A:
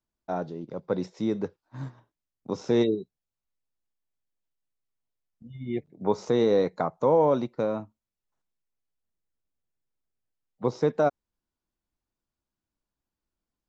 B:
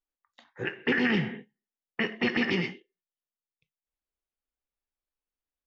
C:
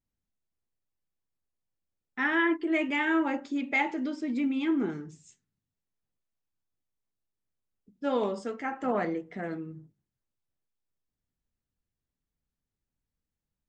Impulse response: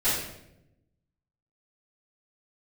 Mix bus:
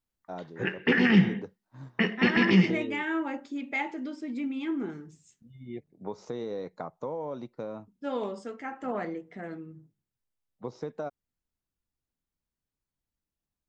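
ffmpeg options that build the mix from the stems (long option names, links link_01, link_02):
-filter_complex "[0:a]acompressor=threshold=-23dB:ratio=5,volume=-8.5dB[link_01];[1:a]equalizer=frequency=190:width_type=o:width=0.22:gain=13.5,volume=1.5dB[link_02];[2:a]volume=-4dB[link_03];[link_01][link_02][link_03]amix=inputs=3:normalize=0"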